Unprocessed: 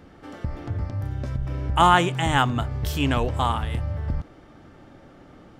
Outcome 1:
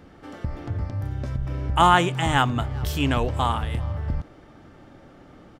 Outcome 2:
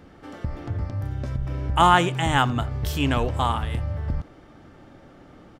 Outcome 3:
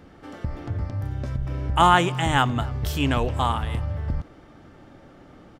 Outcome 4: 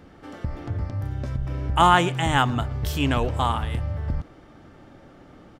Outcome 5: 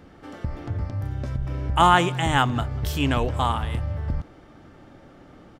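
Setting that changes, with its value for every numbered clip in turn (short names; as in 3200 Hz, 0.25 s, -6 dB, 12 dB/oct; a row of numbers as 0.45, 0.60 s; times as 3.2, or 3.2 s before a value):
speakerphone echo, time: 400, 80, 270, 120, 190 ms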